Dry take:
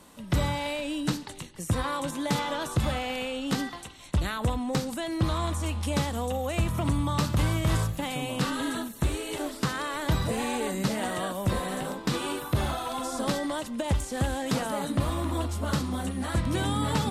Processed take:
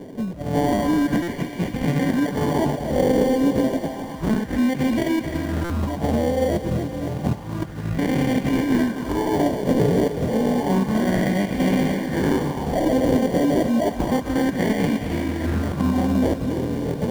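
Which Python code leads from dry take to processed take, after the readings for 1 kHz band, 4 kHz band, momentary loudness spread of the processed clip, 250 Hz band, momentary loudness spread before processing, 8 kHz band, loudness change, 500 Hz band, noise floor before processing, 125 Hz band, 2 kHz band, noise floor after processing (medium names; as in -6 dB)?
+4.0 dB, -1.5 dB, 6 LU, +11.0 dB, 5 LU, -2.0 dB, +7.5 dB, +10.0 dB, -43 dBFS, +3.5 dB, +3.5 dB, -32 dBFS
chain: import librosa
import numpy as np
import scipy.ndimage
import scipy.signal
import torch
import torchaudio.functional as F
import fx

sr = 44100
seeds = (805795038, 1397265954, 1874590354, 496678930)

p1 = fx.over_compress(x, sr, threshold_db=-31.0, ratio=-0.5)
p2 = fx.peak_eq(p1, sr, hz=5100.0, db=12.5, octaves=0.46)
p3 = fx.sample_hold(p2, sr, seeds[0], rate_hz=1300.0, jitter_pct=0)
p4 = fx.peak_eq(p3, sr, hz=210.0, db=13.0, octaves=2.4)
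p5 = p4 + fx.echo_thinned(p4, sr, ms=259, feedback_pct=73, hz=300.0, wet_db=-9, dry=0)
p6 = 10.0 ** (-7.0 / 20.0) * np.tanh(p5 / 10.0 ** (-7.0 / 20.0))
p7 = fx.buffer_glitch(p6, sr, at_s=(1.22, 5.64), block=256, repeats=9)
y = fx.bell_lfo(p7, sr, hz=0.3, low_hz=450.0, high_hz=2400.0, db=8)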